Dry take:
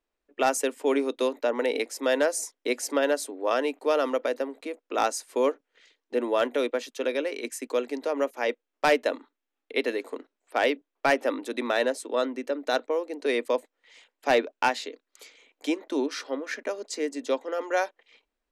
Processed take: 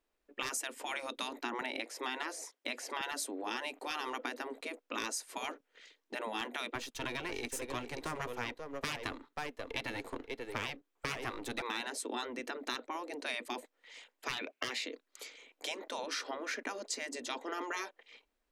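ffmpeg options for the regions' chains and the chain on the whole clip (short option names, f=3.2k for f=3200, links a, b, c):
-filter_complex "[0:a]asettb=1/sr,asplit=3[a][b][c];[a]atrim=end=1.614[d];[b]atrim=start=1.61:end=3.01,asetpts=PTS-STARTPTS,afade=t=in:d=0.004:c=qsin,afade=t=out:st=1.396:d=0.004:c=qsin,acrossover=split=3700[e][f];[f]acompressor=threshold=-47dB:ratio=4:attack=1:release=60[g];[e][g]amix=inputs=2:normalize=0,highpass=330[h];[c]atrim=start=3.006[i];[d][h]acrossfade=d=0.004:c1=hsin:c2=qsin[j];[j][i]acrossfade=d=0.004:c1=qsin:c2=hsin,asettb=1/sr,asplit=3[k][l][m];[k]atrim=end=6.754[n];[l]atrim=start=6.75:end=11.62,asetpts=PTS-STARTPTS,afade=t=in:d=0.004:c=qsin,afade=t=out:st=4.866:d=0.004:c=qsin,aeval=exprs='if(lt(val(0),0),0.447*val(0),val(0))':c=same,bandreject=f=600:w=8,aecho=1:1:535:0.211,atrim=end_sample=214767[o];[m]atrim=start=11.616[p];[n][o]acrossfade=d=0.004:c1=hsin:c2=qsin[q];[q][p]acrossfade=d=0.004:c1=qsin:c2=hsin,asettb=1/sr,asplit=3[r][s][t];[r]atrim=end=14.334[u];[s]atrim=start=14.33:end=14.86,asetpts=PTS-STARTPTS,afade=t=in:d=0.004:c=qsin,afade=t=out:st=0.526:d=0.004:c=qsin,highpass=46,equalizer=f=2.3k:w=3.2:g=14[v];[t]atrim=start=14.856[w];[u][v]acrossfade=d=0.004:c1=hsin:c2=qsin[x];[x][w]acrossfade=d=0.004:c1=qsin:c2=hsin,afftfilt=real='re*lt(hypot(re,im),0.126)':imag='im*lt(hypot(re,im),0.126)':win_size=1024:overlap=0.75,acompressor=threshold=-35dB:ratio=6,volume=1dB"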